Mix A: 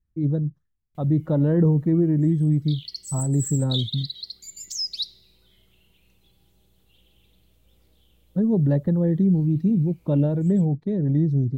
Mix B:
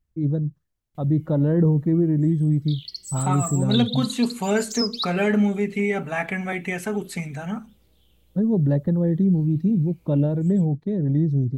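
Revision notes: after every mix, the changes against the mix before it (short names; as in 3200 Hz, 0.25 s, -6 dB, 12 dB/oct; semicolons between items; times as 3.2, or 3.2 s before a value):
second voice: unmuted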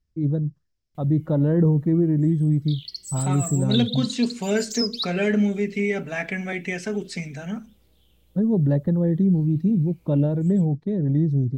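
second voice: add speaker cabinet 140–7600 Hz, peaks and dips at 840 Hz -9 dB, 1200 Hz -9 dB, 5200 Hz +10 dB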